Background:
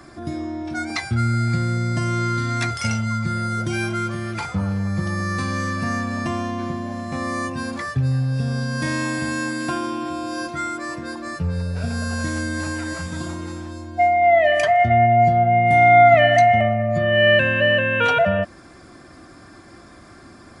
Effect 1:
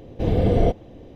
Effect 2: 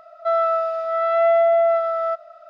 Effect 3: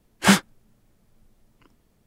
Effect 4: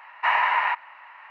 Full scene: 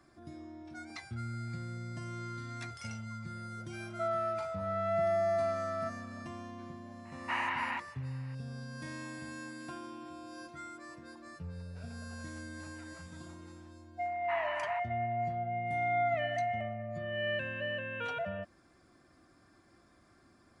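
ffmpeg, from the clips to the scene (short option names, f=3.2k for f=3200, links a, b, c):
-filter_complex "[4:a]asplit=2[a][b];[0:a]volume=-19.5dB[c];[a]highshelf=f=3k:g=9.5[d];[2:a]atrim=end=2.49,asetpts=PTS-STARTPTS,volume=-14dB,afade=t=in:d=0.004:c=hsin,afade=t=out:st=2.486:d=0.004:c=hsin,adelay=3740[e];[d]atrim=end=1.3,asetpts=PTS-STARTPTS,volume=-14.5dB,afade=t=in:d=0.004:c=hsin,afade=t=out:st=1.296:d=0.004:c=hsin,adelay=7050[f];[b]atrim=end=1.3,asetpts=PTS-STARTPTS,volume=-17.5dB,afade=t=in:d=0.004:c=hsin,afade=t=out:st=1.296:d=0.004:c=hsin,adelay=14050[g];[c][e][f][g]amix=inputs=4:normalize=0"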